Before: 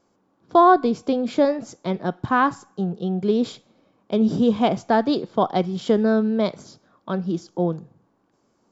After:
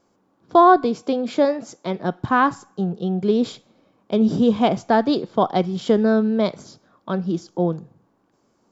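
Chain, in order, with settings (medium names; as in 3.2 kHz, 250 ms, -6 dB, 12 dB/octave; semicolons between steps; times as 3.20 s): 0.84–1.99 s: high-pass 220 Hz 6 dB/octave; trim +1.5 dB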